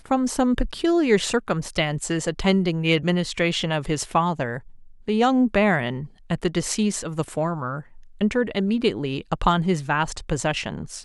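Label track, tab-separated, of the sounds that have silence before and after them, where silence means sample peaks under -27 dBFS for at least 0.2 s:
5.080000	6.040000	sound
6.300000	7.800000	sound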